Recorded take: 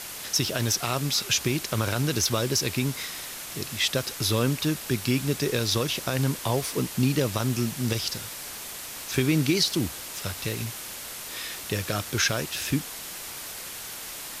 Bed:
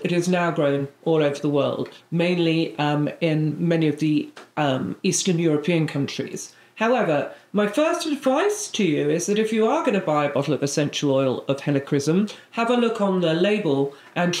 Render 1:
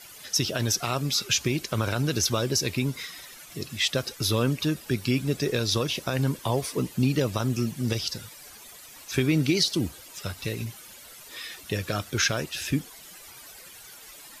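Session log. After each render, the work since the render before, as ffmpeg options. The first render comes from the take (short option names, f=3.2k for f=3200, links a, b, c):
-af "afftdn=nr=13:nf=-38"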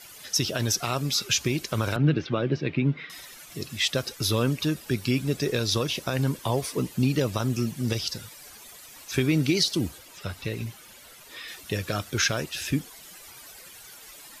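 -filter_complex "[0:a]asettb=1/sr,asplit=3[a][b][c];[a]atrim=end=1.964[d];[b]atrim=start=1.96:end=3.1,asetpts=PTS-STARTPTS,afade=t=in:d=0.004:c=qsin,afade=t=out:st=1.136:d=0.004:c=qsin,highpass=130,equalizer=f=150:t=q:w=4:g=10,equalizer=f=300:t=q:w=4:g=6,equalizer=f=980:t=q:w=4:g=-4,lowpass=f=2.9k:w=0.5412,lowpass=f=2.9k:w=1.3066[e];[c]atrim=start=3.096[f];[d][e]acrossfade=d=0.004:c1=hsin:c2=qsin[g];[g][f]acrossfade=d=0.004:c1=qsin:c2=hsin,asettb=1/sr,asplit=3[h][i][j];[h]atrim=end=9.984[k];[i]atrim=start=9.98:end=11.48,asetpts=PTS-STARTPTS,afade=t=in:d=0.004:c=qsin,afade=t=out:st=1.496:d=0.004:c=qsin,acrossover=split=3900[l][m];[m]acompressor=threshold=-47dB:ratio=4:attack=1:release=60[n];[l][n]amix=inputs=2:normalize=0[o];[j]atrim=start=11.476[p];[k][o]acrossfade=d=0.004:c1=hsin:c2=qsin[q];[q][p]acrossfade=d=0.004:c1=qsin:c2=hsin"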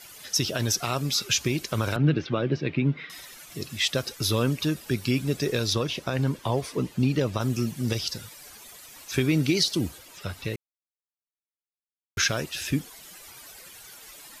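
-filter_complex "[0:a]asettb=1/sr,asplit=3[a][b][c];[a]atrim=end=5.734[d];[b]atrim=start=5.73:end=7.41,asetpts=PTS-STARTPTS,afade=t=in:d=0.004:c=qsin,afade=t=out:st=1.676:d=0.004:c=qsin,lowpass=f=4k:p=1[e];[c]atrim=start=7.406[f];[d][e]acrossfade=d=0.004:c1=hsin:c2=qsin[g];[g][f]acrossfade=d=0.004:c1=qsin:c2=hsin,asplit=3[h][i][j];[h]atrim=end=10.56,asetpts=PTS-STARTPTS,afade=t=out:st=10.556:d=0.004:c=hsin[k];[i]atrim=start=10.56:end=12.17,asetpts=PTS-STARTPTS,volume=0[l];[j]atrim=start=12.17,asetpts=PTS-STARTPTS,afade=t=in:d=0.004:c=hsin[m];[k][l][m]concat=n=3:v=0:a=1"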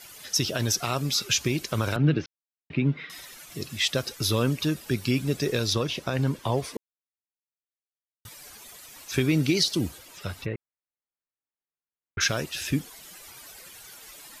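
-filter_complex "[0:a]asplit=3[a][b][c];[a]afade=t=out:st=10.44:d=0.02[d];[b]lowpass=f=2.3k:w=0.5412,lowpass=f=2.3k:w=1.3066,afade=t=in:st=10.44:d=0.02,afade=t=out:st=12.2:d=0.02[e];[c]afade=t=in:st=12.2:d=0.02[f];[d][e][f]amix=inputs=3:normalize=0,asplit=5[g][h][i][j][k];[g]atrim=end=2.26,asetpts=PTS-STARTPTS,afade=t=out:st=2.256:d=0.004:c=hsin[l];[h]atrim=start=2.26:end=2.7,asetpts=PTS-STARTPTS,volume=0[m];[i]atrim=start=2.7:end=6.77,asetpts=PTS-STARTPTS,afade=t=in:d=0.004:c=hsin,afade=t=out:st=4.066:d=0.004:c=hsin[n];[j]atrim=start=6.77:end=8.25,asetpts=PTS-STARTPTS,volume=0[o];[k]atrim=start=8.25,asetpts=PTS-STARTPTS,afade=t=in:d=0.004:c=hsin[p];[l][m][n][o][p]concat=n=5:v=0:a=1"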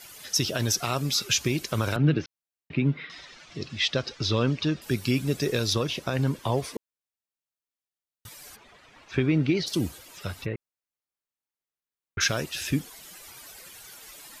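-filter_complex "[0:a]asettb=1/sr,asplit=3[a][b][c];[a]atrim=end=2.974[d];[b]atrim=start=2.97:end=4.82,asetpts=PTS-STARTPTS,afade=t=in:d=0.004:c=qsin,afade=t=out:st=1.846:d=0.004:c=qsin,lowpass=f=5.4k:w=0.5412,lowpass=f=5.4k:w=1.3066[e];[c]atrim=start=4.816[f];[d][e]acrossfade=d=0.004:c1=hsin:c2=qsin[g];[g][f]acrossfade=d=0.004:c1=qsin:c2=hsin,asplit=3[h][i][j];[h]afade=t=out:st=8.55:d=0.02[k];[i]lowpass=2.5k,afade=t=in:st=8.55:d=0.02,afade=t=out:st=9.66:d=0.02[l];[j]afade=t=in:st=9.66:d=0.02[m];[k][l][m]amix=inputs=3:normalize=0"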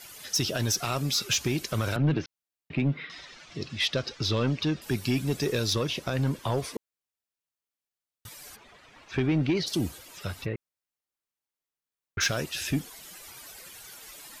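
-af "asoftclip=type=tanh:threshold=-17.5dB"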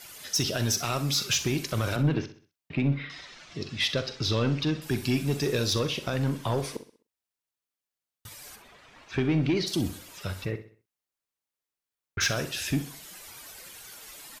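-filter_complex "[0:a]asplit=2[a][b];[b]adelay=43,volume=-13.5dB[c];[a][c]amix=inputs=2:normalize=0,aecho=1:1:64|128|192|256:0.211|0.0845|0.0338|0.0135"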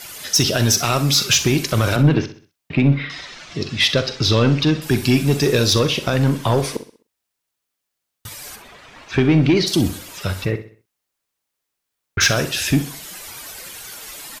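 -af "volume=10.5dB"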